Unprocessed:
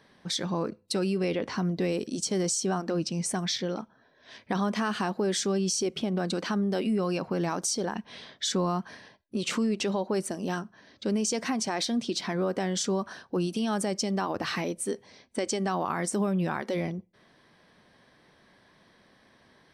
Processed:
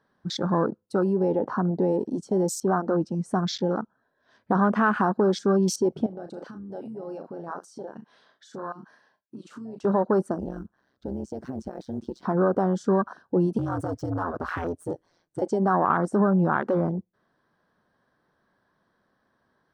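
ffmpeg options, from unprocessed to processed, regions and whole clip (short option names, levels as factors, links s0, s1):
-filter_complex "[0:a]asettb=1/sr,asplit=3[s0][s1][s2];[s0]atrim=end=0.844[s3];[s1]atrim=start=0.84:end=3.28,asetpts=PTS-STARTPTS,afade=t=in:d=0.004:c=qsin,afade=t=out:st=2.436:d=0.004:c=qsin,highpass=f=180:p=1,equalizer=f=4300:t=o:w=1.9:g=-3.5[s4];[s2]atrim=start=3.276[s5];[s3][s4]acrossfade=d=0.004:c1=hsin:c2=qsin[s6];[s6][s5]acrossfade=d=0.004:c1=qsin:c2=hsin,asettb=1/sr,asplit=3[s7][s8][s9];[s7]atrim=end=6.064[s10];[s8]atrim=start=6.06:end=9.85,asetpts=PTS-STARTPTS,afade=t=in:d=0.004:c=qsin,afade=t=out:st=3.786:d=0.004:c=qsin,asplit=2[s11][s12];[s12]adelay=36,volume=0.355[s13];[s11][s13]amix=inputs=2:normalize=0,atrim=end_sample=167139,acompressor=threshold=0.0251:ratio=10:attack=3.2:release=140:knee=1:detection=peak,highpass=f=570:p=1[s14];[s9]atrim=start=9.846[s15];[s10][s14]acrossfade=d=0.004:c1=hsin:c2=qsin[s16];[s16][s15]acrossfade=d=0.004:c1=qsin:c2=hsin,asettb=1/sr,asplit=3[s17][s18][s19];[s17]atrim=end=10.404[s20];[s18]atrim=start=10.4:end=12.23,asetpts=PTS-STARTPTS,afade=t=in:d=0.004:c=qsin,afade=t=out:st=1.826:d=0.004:c=qsin,acompressor=threshold=0.0316:ratio=12:attack=3.2:release=140:knee=1:detection=peak,tremolo=f=130:d=0.889,acrusher=bits=6:mode=log:mix=0:aa=0.000001[s21];[s19]atrim=start=12.226[s22];[s20][s21]acrossfade=d=0.004:c1=hsin:c2=qsin[s23];[s23][s22]acrossfade=d=0.004:c1=qsin:c2=hsin,asettb=1/sr,asplit=3[s24][s25][s26];[s24]atrim=end=13.584[s27];[s25]atrim=start=13.58:end=15.42,asetpts=PTS-STARTPTS,afade=t=in:d=0.004:c=qsin,afade=t=out:st=1.836:d=0.004:c=qsin,highshelf=f=3900:g=6,asoftclip=type=hard:threshold=0.0376,aeval=exprs='val(0)*sin(2*PI*85*n/s)':c=same[s28];[s26]atrim=start=15.416[s29];[s27][s28]acrossfade=d=0.004:c1=hsin:c2=qsin[s30];[s30][s29]acrossfade=d=0.004:c1=qsin:c2=hsin,afwtdn=0.0178,highshelf=f=1800:t=q:w=3:g=-6,volume=2"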